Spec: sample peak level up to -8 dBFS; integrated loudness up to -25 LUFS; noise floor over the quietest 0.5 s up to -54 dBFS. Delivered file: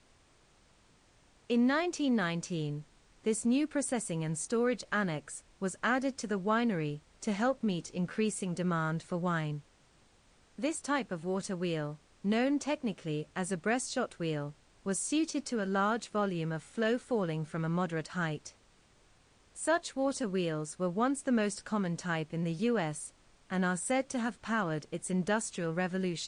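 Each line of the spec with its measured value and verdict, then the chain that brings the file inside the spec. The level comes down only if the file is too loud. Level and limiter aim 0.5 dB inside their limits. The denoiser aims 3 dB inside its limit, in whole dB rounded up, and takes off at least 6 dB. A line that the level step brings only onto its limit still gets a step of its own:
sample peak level -18.0 dBFS: pass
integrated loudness -33.0 LUFS: pass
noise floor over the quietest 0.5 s -65 dBFS: pass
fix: none needed

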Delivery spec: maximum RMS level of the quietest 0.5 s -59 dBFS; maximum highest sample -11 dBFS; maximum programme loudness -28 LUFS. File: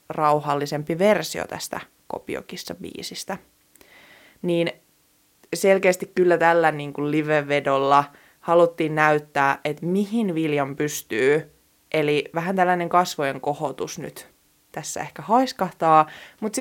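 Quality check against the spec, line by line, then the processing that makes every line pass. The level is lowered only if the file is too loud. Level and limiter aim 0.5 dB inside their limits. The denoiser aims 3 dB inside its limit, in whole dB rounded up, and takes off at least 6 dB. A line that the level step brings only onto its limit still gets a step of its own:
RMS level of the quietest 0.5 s -62 dBFS: pass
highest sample -2.5 dBFS: fail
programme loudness -22.0 LUFS: fail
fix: trim -6.5 dB; peak limiter -11.5 dBFS

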